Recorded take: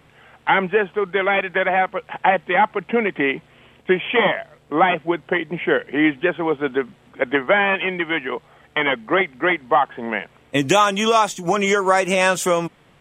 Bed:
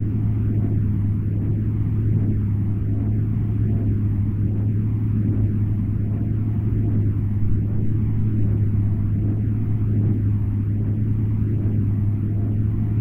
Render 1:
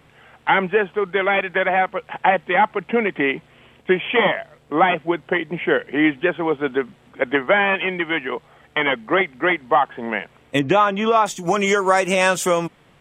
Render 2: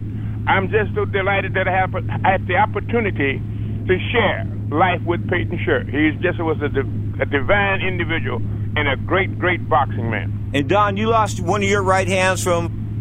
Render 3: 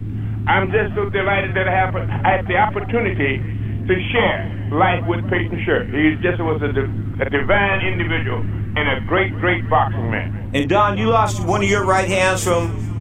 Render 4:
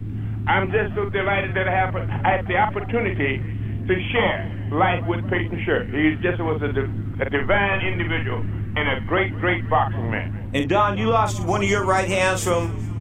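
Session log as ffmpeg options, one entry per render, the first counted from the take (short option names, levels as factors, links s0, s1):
-filter_complex "[0:a]asettb=1/sr,asplit=3[s0][s1][s2];[s0]atrim=end=10.594[s3];[s1]atrim=start=10.59:end=11.26,asetpts=PTS-STARTPTS,afade=t=in:d=0.004:c=qsin,afade=t=out:st=0.666:d=0.004:c=qsin,lowpass=2200[s4];[s2]atrim=start=11.256[s5];[s3][s4]acrossfade=d=0.004:c1=hsin:c2=qsin[s6];[s6][s5]acrossfade=d=0.004:c1=qsin:c2=hsin"
-filter_complex "[1:a]volume=0.631[s0];[0:a][s0]amix=inputs=2:normalize=0"
-filter_complex "[0:a]asplit=2[s0][s1];[s1]adelay=45,volume=0.422[s2];[s0][s2]amix=inputs=2:normalize=0,asplit=6[s3][s4][s5][s6][s7][s8];[s4]adelay=211,afreqshift=-91,volume=0.0794[s9];[s5]adelay=422,afreqshift=-182,volume=0.0507[s10];[s6]adelay=633,afreqshift=-273,volume=0.0324[s11];[s7]adelay=844,afreqshift=-364,volume=0.0209[s12];[s8]adelay=1055,afreqshift=-455,volume=0.0133[s13];[s3][s9][s10][s11][s12][s13]amix=inputs=6:normalize=0"
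-af "volume=0.668"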